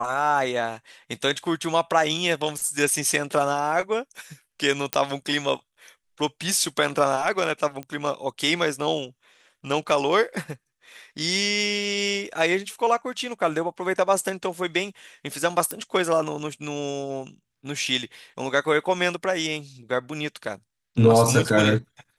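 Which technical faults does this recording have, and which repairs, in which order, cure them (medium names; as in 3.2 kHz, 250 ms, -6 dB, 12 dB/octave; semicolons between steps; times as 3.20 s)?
4.93 s: pop -5 dBFS
7.83 s: pop -21 dBFS
15.71 s: pop -11 dBFS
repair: de-click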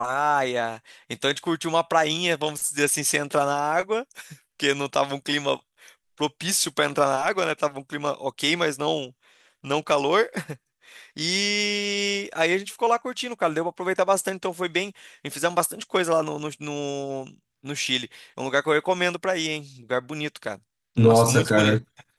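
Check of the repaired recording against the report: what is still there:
nothing left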